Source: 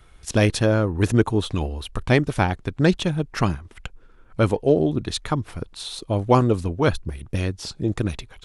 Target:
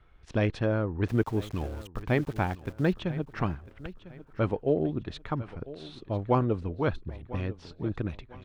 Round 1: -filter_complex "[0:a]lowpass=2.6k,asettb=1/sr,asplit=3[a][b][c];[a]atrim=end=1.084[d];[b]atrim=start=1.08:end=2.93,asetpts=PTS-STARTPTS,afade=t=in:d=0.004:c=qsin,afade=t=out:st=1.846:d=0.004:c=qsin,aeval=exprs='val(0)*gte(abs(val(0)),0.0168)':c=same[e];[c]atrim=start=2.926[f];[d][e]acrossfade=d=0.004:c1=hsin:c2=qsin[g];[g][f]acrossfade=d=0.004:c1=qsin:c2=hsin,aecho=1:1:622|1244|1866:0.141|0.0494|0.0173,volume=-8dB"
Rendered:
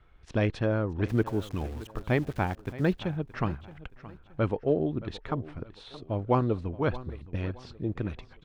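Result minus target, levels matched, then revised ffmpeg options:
echo 0.378 s early
-filter_complex "[0:a]lowpass=2.6k,asettb=1/sr,asplit=3[a][b][c];[a]atrim=end=1.084[d];[b]atrim=start=1.08:end=2.93,asetpts=PTS-STARTPTS,afade=t=in:d=0.004:c=qsin,afade=t=out:st=1.846:d=0.004:c=qsin,aeval=exprs='val(0)*gte(abs(val(0)),0.0168)':c=same[e];[c]atrim=start=2.926[f];[d][e]acrossfade=d=0.004:c1=hsin:c2=qsin[g];[g][f]acrossfade=d=0.004:c1=qsin:c2=hsin,aecho=1:1:1000|2000|3000:0.141|0.0494|0.0173,volume=-8dB"

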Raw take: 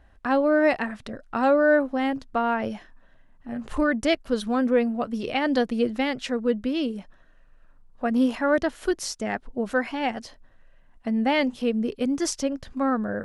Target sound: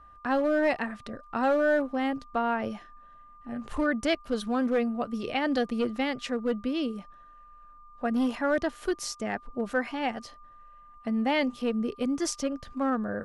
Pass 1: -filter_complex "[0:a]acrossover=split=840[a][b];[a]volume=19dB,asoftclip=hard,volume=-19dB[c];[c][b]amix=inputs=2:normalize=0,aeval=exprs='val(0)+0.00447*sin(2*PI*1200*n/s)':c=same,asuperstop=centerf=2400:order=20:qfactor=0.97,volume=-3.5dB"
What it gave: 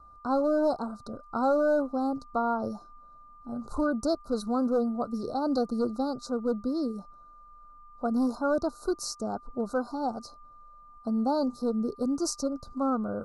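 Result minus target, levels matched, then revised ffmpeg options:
2000 Hz band -10.0 dB
-filter_complex "[0:a]acrossover=split=840[a][b];[a]volume=19dB,asoftclip=hard,volume=-19dB[c];[c][b]amix=inputs=2:normalize=0,aeval=exprs='val(0)+0.00447*sin(2*PI*1200*n/s)':c=same,volume=-3.5dB"

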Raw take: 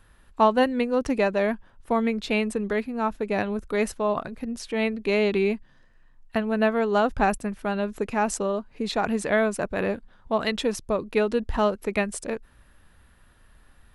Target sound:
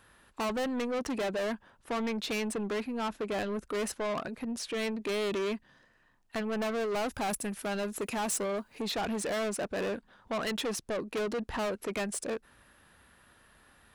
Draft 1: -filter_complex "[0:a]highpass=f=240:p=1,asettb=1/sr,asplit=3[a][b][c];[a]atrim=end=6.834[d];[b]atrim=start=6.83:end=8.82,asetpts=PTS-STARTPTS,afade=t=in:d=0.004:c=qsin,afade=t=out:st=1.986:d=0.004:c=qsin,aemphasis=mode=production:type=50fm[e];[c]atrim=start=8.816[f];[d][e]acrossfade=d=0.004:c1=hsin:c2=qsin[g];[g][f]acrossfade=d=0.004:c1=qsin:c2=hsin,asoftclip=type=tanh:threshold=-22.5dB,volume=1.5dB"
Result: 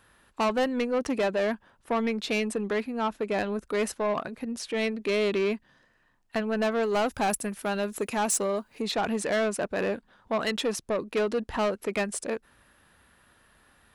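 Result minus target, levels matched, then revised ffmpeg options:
soft clip: distortion -5 dB
-filter_complex "[0:a]highpass=f=240:p=1,asettb=1/sr,asplit=3[a][b][c];[a]atrim=end=6.834[d];[b]atrim=start=6.83:end=8.82,asetpts=PTS-STARTPTS,afade=t=in:d=0.004:c=qsin,afade=t=out:st=1.986:d=0.004:c=qsin,aemphasis=mode=production:type=50fm[e];[c]atrim=start=8.816[f];[d][e]acrossfade=d=0.004:c1=hsin:c2=qsin[g];[g][f]acrossfade=d=0.004:c1=qsin:c2=hsin,asoftclip=type=tanh:threshold=-31dB,volume=1.5dB"

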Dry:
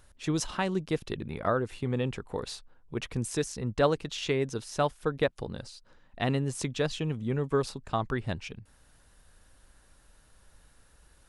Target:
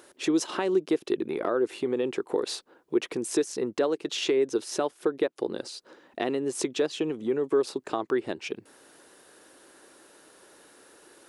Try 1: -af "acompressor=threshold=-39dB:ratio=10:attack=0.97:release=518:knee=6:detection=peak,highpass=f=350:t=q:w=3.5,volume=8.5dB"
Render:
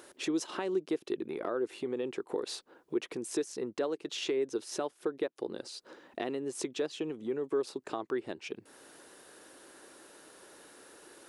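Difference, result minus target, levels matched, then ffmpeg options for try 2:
compressor: peak gain reduction +7 dB
-af "acompressor=threshold=-31dB:ratio=10:attack=0.97:release=518:knee=6:detection=peak,highpass=f=350:t=q:w=3.5,volume=8.5dB"

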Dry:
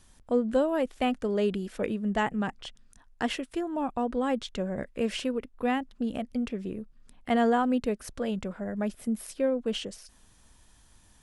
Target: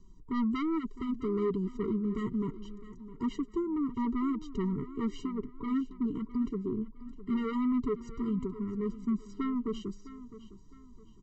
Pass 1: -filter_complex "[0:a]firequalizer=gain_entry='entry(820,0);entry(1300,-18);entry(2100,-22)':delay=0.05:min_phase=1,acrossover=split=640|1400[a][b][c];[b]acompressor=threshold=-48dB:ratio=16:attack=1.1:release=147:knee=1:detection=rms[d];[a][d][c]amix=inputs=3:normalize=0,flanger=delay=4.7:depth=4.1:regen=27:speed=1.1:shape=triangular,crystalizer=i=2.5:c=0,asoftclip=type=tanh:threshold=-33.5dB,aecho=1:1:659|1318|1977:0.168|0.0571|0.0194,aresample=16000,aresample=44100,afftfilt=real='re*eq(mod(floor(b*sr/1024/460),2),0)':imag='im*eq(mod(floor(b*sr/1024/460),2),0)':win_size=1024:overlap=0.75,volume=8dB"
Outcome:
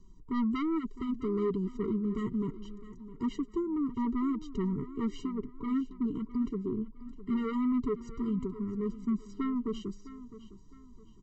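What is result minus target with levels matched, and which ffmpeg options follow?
compressor: peak gain reduction +7.5 dB
-filter_complex "[0:a]firequalizer=gain_entry='entry(820,0);entry(1300,-18);entry(2100,-22)':delay=0.05:min_phase=1,acrossover=split=640|1400[a][b][c];[b]acompressor=threshold=-40dB:ratio=16:attack=1.1:release=147:knee=1:detection=rms[d];[a][d][c]amix=inputs=3:normalize=0,flanger=delay=4.7:depth=4.1:regen=27:speed=1.1:shape=triangular,crystalizer=i=2.5:c=0,asoftclip=type=tanh:threshold=-33.5dB,aecho=1:1:659|1318|1977:0.168|0.0571|0.0194,aresample=16000,aresample=44100,afftfilt=real='re*eq(mod(floor(b*sr/1024/460),2),0)':imag='im*eq(mod(floor(b*sr/1024/460),2),0)':win_size=1024:overlap=0.75,volume=8dB"

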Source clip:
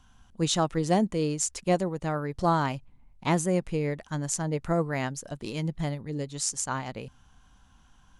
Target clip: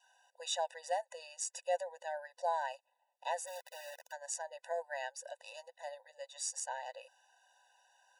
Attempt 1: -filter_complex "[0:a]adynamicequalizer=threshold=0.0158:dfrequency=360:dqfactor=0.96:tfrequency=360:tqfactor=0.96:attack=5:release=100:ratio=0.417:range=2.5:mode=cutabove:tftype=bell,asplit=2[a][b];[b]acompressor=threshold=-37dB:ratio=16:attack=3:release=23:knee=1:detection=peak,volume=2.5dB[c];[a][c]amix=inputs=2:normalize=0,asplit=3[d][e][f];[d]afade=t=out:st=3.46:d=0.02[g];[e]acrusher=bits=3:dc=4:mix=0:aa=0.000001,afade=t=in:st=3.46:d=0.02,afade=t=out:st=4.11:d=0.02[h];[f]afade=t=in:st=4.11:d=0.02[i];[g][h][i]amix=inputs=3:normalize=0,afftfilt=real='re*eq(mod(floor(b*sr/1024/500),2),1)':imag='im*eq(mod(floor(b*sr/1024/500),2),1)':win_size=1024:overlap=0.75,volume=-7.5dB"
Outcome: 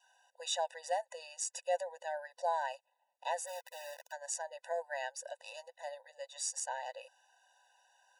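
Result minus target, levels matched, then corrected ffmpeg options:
compressor: peak gain reduction -6 dB
-filter_complex "[0:a]adynamicequalizer=threshold=0.0158:dfrequency=360:dqfactor=0.96:tfrequency=360:tqfactor=0.96:attack=5:release=100:ratio=0.417:range=2.5:mode=cutabove:tftype=bell,asplit=2[a][b];[b]acompressor=threshold=-43.5dB:ratio=16:attack=3:release=23:knee=1:detection=peak,volume=2.5dB[c];[a][c]amix=inputs=2:normalize=0,asplit=3[d][e][f];[d]afade=t=out:st=3.46:d=0.02[g];[e]acrusher=bits=3:dc=4:mix=0:aa=0.000001,afade=t=in:st=3.46:d=0.02,afade=t=out:st=4.11:d=0.02[h];[f]afade=t=in:st=4.11:d=0.02[i];[g][h][i]amix=inputs=3:normalize=0,afftfilt=real='re*eq(mod(floor(b*sr/1024/500),2),1)':imag='im*eq(mod(floor(b*sr/1024/500),2),1)':win_size=1024:overlap=0.75,volume=-7.5dB"

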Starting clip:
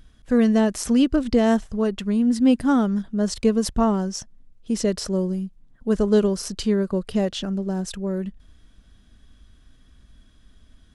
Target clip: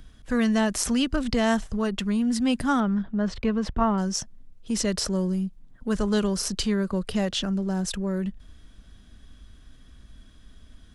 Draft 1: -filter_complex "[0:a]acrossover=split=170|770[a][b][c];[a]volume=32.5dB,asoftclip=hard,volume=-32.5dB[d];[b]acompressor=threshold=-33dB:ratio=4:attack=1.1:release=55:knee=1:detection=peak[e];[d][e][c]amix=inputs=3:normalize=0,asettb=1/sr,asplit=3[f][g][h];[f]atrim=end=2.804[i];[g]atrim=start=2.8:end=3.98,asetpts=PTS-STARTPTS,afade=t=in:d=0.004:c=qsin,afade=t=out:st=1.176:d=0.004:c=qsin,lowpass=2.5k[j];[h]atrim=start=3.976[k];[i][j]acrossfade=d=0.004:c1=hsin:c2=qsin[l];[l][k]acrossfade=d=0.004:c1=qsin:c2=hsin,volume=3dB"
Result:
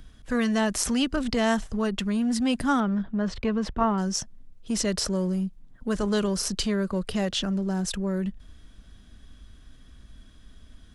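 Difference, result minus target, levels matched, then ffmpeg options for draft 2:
overloaded stage: distortion +7 dB
-filter_complex "[0:a]acrossover=split=170|770[a][b][c];[a]volume=25.5dB,asoftclip=hard,volume=-25.5dB[d];[b]acompressor=threshold=-33dB:ratio=4:attack=1.1:release=55:knee=1:detection=peak[e];[d][e][c]amix=inputs=3:normalize=0,asettb=1/sr,asplit=3[f][g][h];[f]atrim=end=2.804[i];[g]atrim=start=2.8:end=3.98,asetpts=PTS-STARTPTS,afade=t=in:d=0.004:c=qsin,afade=t=out:st=1.176:d=0.004:c=qsin,lowpass=2.5k[j];[h]atrim=start=3.976[k];[i][j]acrossfade=d=0.004:c1=hsin:c2=qsin[l];[l][k]acrossfade=d=0.004:c1=qsin:c2=hsin,volume=3dB"

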